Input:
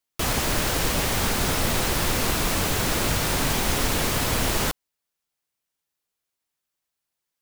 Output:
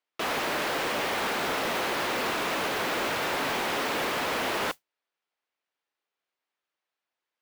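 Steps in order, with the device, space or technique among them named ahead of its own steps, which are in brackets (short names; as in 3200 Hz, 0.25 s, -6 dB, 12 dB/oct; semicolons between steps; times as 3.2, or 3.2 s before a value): carbon microphone (BPF 360–3000 Hz; soft clip -26 dBFS, distortion -14 dB; modulation noise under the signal 14 dB); gain +2.5 dB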